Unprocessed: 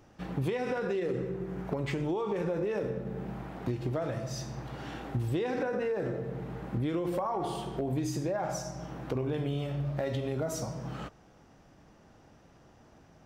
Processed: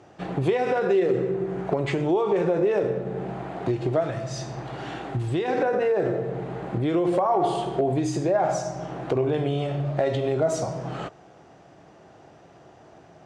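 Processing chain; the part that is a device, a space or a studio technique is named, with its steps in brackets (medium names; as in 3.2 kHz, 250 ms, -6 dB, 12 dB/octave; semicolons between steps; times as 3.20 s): 4.00–5.48 s: dynamic bell 530 Hz, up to -7 dB, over -46 dBFS, Q 1.1; car door speaker (cabinet simulation 110–8700 Hz, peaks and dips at 230 Hz -7 dB, 380 Hz +5 dB, 690 Hz +7 dB, 5.5 kHz -5 dB); trim +7 dB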